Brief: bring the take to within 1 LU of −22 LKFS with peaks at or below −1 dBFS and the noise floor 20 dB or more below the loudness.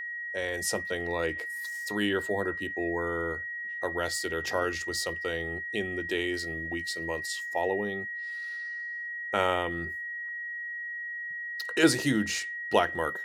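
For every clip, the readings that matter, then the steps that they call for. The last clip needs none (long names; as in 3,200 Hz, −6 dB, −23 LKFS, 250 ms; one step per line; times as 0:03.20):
interfering tone 1,900 Hz; level of the tone −34 dBFS; integrated loudness −30.5 LKFS; sample peak −8.0 dBFS; target loudness −22.0 LKFS
→ notch filter 1,900 Hz, Q 30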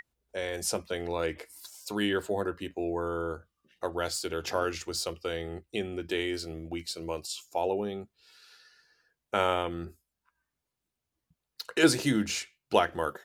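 interfering tone none found; integrated loudness −31.5 LKFS; sample peak −7.5 dBFS; target loudness −22.0 LKFS
→ level +9.5 dB
brickwall limiter −1 dBFS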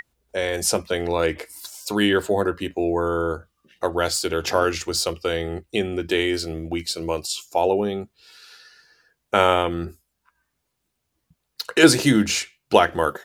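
integrated loudness −22.0 LKFS; sample peak −1.0 dBFS; background noise floor −77 dBFS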